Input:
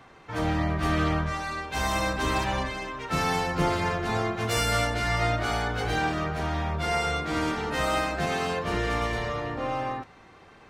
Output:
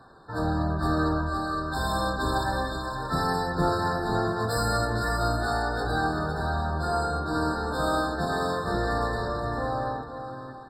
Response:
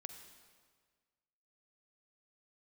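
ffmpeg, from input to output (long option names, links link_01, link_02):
-af "aecho=1:1:512|688:0.422|0.237,afftfilt=real='re*eq(mod(floor(b*sr/1024/1800),2),0)':imag='im*eq(mod(floor(b*sr/1024/1800),2),0)':win_size=1024:overlap=0.75"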